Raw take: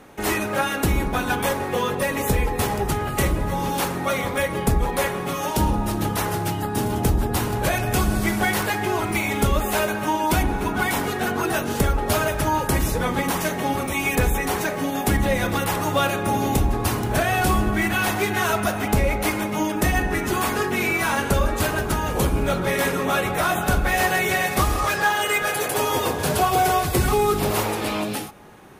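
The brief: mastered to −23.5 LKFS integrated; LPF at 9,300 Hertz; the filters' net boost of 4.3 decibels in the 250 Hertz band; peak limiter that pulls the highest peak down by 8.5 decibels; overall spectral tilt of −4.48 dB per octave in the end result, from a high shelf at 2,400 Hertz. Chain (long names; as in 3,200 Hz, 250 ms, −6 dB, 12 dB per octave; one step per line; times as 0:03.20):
low-pass filter 9,300 Hz
parametric band 250 Hz +5.5 dB
high-shelf EQ 2,400 Hz +4.5 dB
brickwall limiter −14.5 dBFS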